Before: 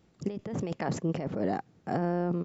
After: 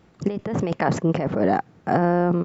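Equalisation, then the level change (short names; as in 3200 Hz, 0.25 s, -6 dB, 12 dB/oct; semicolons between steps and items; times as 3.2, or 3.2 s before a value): low shelf 430 Hz +5 dB; bell 1300 Hz +9 dB 2.7 oct; +3.5 dB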